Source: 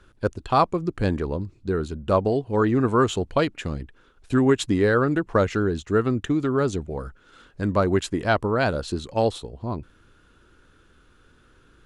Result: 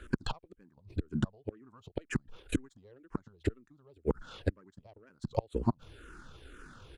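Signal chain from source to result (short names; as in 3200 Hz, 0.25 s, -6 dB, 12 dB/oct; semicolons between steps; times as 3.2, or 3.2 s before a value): self-modulated delay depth 0.053 ms; flipped gate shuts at -20 dBFS, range -42 dB; tempo 1.7×; endless phaser -2 Hz; gain +8.5 dB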